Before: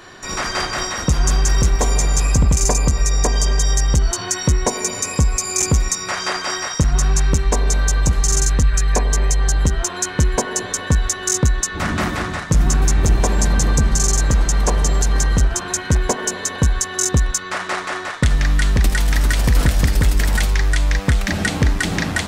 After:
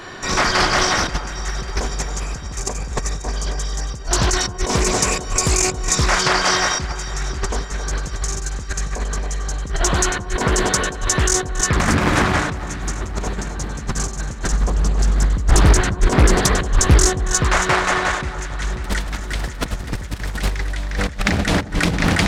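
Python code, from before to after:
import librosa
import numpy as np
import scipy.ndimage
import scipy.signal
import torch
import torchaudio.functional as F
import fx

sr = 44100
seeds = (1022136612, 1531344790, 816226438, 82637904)

y = fx.high_shelf(x, sr, hz=7000.0, db=-6.5)
y = fx.echo_feedback(y, sr, ms=276, feedback_pct=36, wet_db=-10.0)
y = fx.over_compress(y, sr, threshold_db=-21.0, ratio=-0.5)
y = fx.low_shelf(y, sr, hz=250.0, db=9.0, at=(14.53, 17.1))
y = fx.echo_alternate(y, sr, ms=269, hz=1300.0, feedback_pct=79, wet_db=-13.0)
y = fx.doppler_dist(y, sr, depth_ms=0.99)
y = y * 10.0 ** (1.5 / 20.0)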